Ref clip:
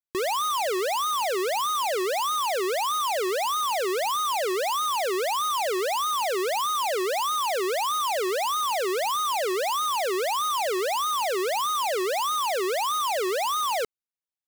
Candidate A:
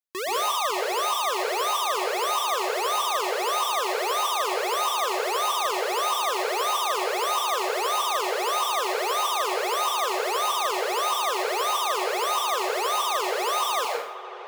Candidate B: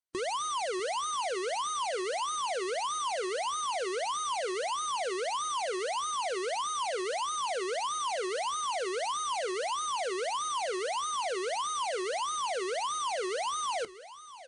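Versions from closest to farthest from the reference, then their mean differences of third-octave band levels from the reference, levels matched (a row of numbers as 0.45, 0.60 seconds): B, A; 4.5, 7.5 decibels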